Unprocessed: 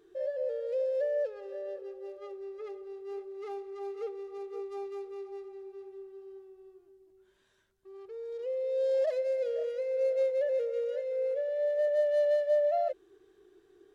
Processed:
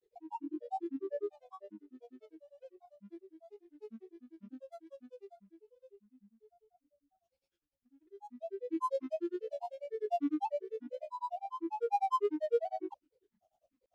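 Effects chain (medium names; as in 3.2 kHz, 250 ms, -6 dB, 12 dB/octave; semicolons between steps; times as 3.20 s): high-order bell 1.1 kHz -11 dB 1.2 oct; granulator, grains 10 per s, pitch spread up and down by 12 st; upward expansion 1.5:1, over -48 dBFS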